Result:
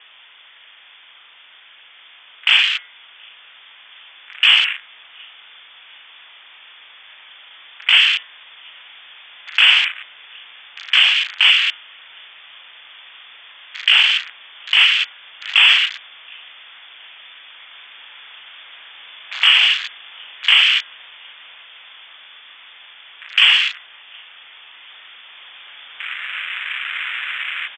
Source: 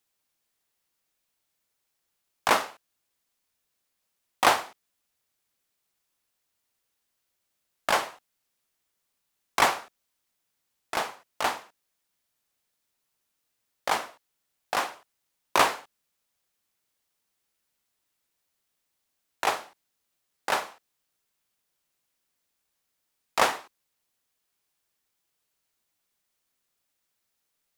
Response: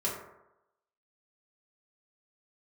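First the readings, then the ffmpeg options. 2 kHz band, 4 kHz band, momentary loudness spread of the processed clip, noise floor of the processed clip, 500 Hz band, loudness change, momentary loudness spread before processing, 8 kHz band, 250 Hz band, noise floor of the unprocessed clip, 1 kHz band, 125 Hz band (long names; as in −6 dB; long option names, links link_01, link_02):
+16.5 dB, +23.5 dB, 14 LU, −46 dBFS, below −15 dB, +13.5 dB, 16 LU, −2.0 dB, below −20 dB, −79 dBFS, −4.0 dB, below −20 dB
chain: -filter_complex "[0:a]aeval=exprs='val(0)+0.5*0.0473*sgn(val(0))':channel_layout=same,acrossover=split=470[link_01][link_02];[link_01]acontrast=38[link_03];[link_03][link_02]amix=inputs=2:normalize=0,asplit=2[link_04][link_05];[link_05]adelay=37,volume=-6dB[link_06];[link_04][link_06]amix=inputs=2:normalize=0,asplit=2[link_07][link_08];[link_08]adelay=725,lowpass=frequency=1700:poles=1,volume=-20.5dB,asplit=2[link_09][link_10];[link_10]adelay=725,lowpass=frequency=1700:poles=1,volume=0.44,asplit=2[link_11][link_12];[link_12]adelay=725,lowpass=frequency=1700:poles=1,volume=0.44[link_13];[link_07][link_09][link_11][link_13]amix=inputs=4:normalize=0,dynaudnorm=framelen=450:gausssize=13:maxgain=16dB,asoftclip=type=hard:threshold=-10dB,acrossover=split=160 2700:gain=0.141 1 0.0794[link_14][link_15][link_16];[link_14][link_15][link_16]amix=inputs=3:normalize=0,lowpass=frequency=3100:width_type=q:width=0.5098,lowpass=frequency=3100:width_type=q:width=0.6013,lowpass=frequency=3100:width_type=q:width=0.9,lowpass=frequency=3100:width_type=q:width=2.563,afreqshift=-3700,afwtdn=0.0316,lowshelf=frequency=450:gain=-11.5,bandreject=frequency=179.1:width_type=h:width=4,bandreject=frequency=358.2:width_type=h:width=4,bandreject=frequency=537.3:width_type=h:width=4,bandreject=frequency=716.4:width_type=h:width=4,bandreject=frequency=895.5:width_type=h:width=4,bandreject=frequency=1074.6:width_type=h:width=4,bandreject=frequency=1253.7:width_type=h:width=4,bandreject=frequency=1432.8:width_type=h:width=4,bandreject=frequency=1611.9:width_type=h:width=4,bandreject=frequency=1791:width_type=h:width=4,bandreject=frequency=1970.1:width_type=h:width=4,bandreject=frequency=2149.2:width_type=h:width=4,alimiter=level_in=12.5dB:limit=-1dB:release=50:level=0:latency=1,volume=-1dB"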